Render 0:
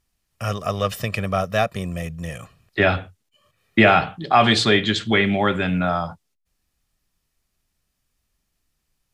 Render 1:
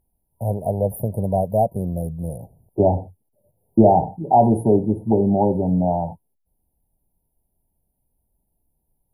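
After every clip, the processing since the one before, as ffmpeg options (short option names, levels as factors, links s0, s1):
-af "afftfilt=real='re*(1-between(b*sr/4096,960,9500))':imag='im*(1-between(b*sr/4096,960,9500))':win_size=4096:overlap=0.75,volume=1.41"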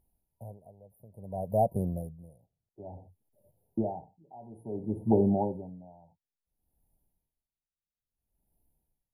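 -filter_complex "[0:a]asplit=2[s0][s1];[s1]acompressor=threshold=0.0631:ratio=6,volume=0.708[s2];[s0][s2]amix=inputs=2:normalize=0,aeval=exprs='val(0)*pow(10,-29*(0.5-0.5*cos(2*PI*0.58*n/s))/20)':c=same,volume=0.422"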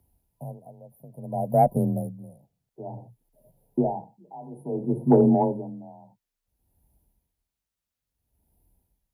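-af "afreqshift=27,acontrast=81"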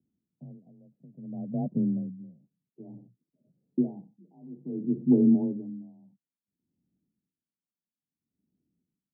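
-af "asuperpass=centerf=230:order=4:qfactor=1.4"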